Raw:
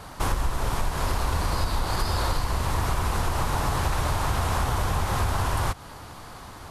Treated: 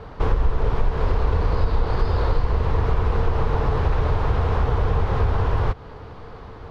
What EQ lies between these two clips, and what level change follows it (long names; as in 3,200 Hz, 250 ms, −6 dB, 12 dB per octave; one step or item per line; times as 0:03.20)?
high-frequency loss of the air 260 metres
low-shelf EQ 140 Hz +7.5 dB
parametric band 450 Hz +13.5 dB 0.34 octaves
0.0 dB